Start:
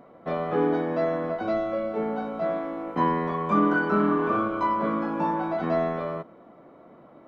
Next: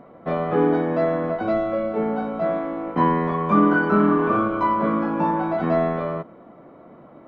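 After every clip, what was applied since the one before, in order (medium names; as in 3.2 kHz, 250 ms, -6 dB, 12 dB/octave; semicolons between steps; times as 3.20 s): tone controls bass +3 dB, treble -8 dB; trim +4 dB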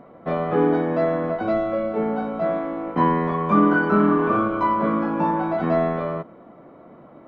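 no audible change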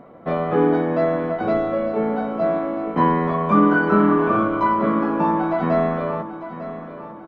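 feedback delay 900 ms, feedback 44%, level -13 dB; trim +1.5 dB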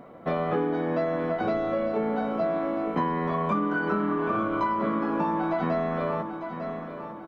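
treble shelf 3.2 kHz +8 dB; compression 10:1, threshold -20 dBFS, peak gain reduction 10.5 dB; trim -2.5 dB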